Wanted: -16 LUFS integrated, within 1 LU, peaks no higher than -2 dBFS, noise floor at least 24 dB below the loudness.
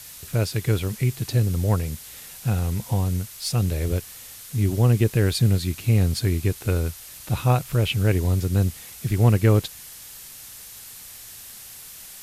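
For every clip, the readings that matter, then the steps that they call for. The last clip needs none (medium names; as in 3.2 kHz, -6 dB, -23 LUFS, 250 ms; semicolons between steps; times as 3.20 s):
noise floor -42 dBFS; noise floor target -47 dBFS; loudness -23.0 LUFS; peak level -6.0 dBFS; loudness target -16.0 LUFS
-> noise print and reduce 6 dB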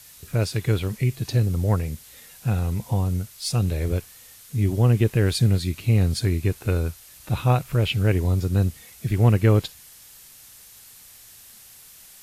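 noise floor -48 dBFS; loudness -23.0 LUFS; peak level -6.5 dBFS; loudness target -16.0 LUFS
-> trim +7 dB; peak limiter -2 dBFS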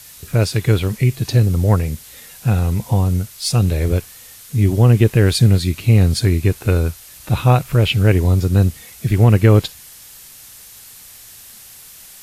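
loudness -16.5 LUFS; peak level -2.0 dBFS; noise floor -41 dBFS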